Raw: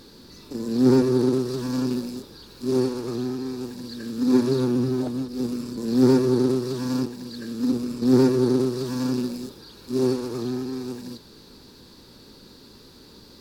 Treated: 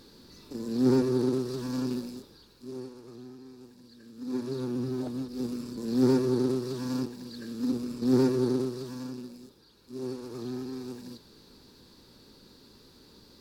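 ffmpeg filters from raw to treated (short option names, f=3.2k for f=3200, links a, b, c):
-af "volume=14dB,afade=t=out:st=1.96:d=0.79:silence=0.251189,afade=t=in:st=4.14:d=1.07:silence=0.251189,afade=t=out:st=8.44:d=0.71:silence=0.354813,afade=t=in:st=10:d=0.6:silence=0.398107"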